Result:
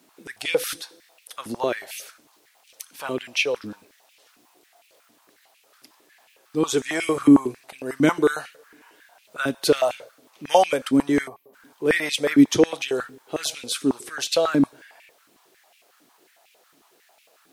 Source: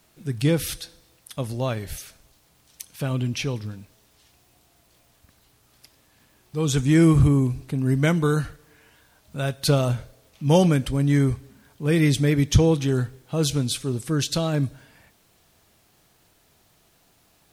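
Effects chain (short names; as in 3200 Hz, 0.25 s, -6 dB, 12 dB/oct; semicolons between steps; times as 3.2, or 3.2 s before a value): spectral gain 11.28–11.54, 1200–11000 Hz -18 dB; stepped high-pass 11 Hz 270–2500 Hz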